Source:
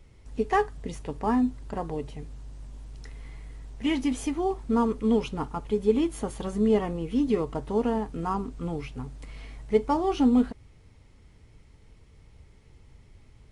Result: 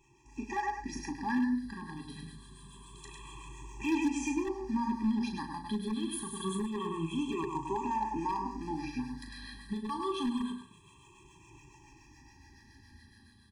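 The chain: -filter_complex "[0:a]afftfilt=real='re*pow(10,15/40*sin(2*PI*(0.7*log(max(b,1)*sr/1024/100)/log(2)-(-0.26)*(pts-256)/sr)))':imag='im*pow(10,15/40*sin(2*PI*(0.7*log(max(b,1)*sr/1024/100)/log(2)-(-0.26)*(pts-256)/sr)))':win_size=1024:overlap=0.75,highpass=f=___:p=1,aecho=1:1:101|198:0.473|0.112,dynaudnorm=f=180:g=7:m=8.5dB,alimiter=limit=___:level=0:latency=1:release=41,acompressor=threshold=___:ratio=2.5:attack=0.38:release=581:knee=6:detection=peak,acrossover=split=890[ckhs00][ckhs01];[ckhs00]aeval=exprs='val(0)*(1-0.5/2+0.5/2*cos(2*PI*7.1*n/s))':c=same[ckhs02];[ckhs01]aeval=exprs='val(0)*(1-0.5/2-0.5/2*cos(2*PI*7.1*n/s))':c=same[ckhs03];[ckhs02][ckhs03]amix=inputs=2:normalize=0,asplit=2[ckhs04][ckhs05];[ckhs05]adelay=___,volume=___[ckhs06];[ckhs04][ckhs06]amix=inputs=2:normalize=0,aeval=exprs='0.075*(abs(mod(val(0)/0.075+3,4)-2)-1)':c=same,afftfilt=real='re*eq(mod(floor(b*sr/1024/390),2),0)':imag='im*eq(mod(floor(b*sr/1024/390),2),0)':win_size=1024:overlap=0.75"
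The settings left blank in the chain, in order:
550, -11dB, -26dB, 37, -7dB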